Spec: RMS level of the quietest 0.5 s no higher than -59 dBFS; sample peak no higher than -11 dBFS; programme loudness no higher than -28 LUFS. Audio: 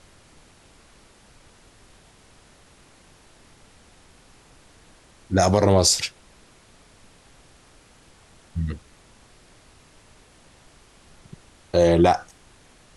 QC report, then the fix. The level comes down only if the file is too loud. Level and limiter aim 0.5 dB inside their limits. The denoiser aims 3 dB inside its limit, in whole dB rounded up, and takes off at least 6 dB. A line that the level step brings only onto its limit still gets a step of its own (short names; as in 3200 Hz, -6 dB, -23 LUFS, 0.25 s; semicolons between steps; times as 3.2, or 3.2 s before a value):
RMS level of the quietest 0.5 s -53 dBFS: fail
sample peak -5.5 dBFS: fail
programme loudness -20.5 LUFS: fail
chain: gain -8 dB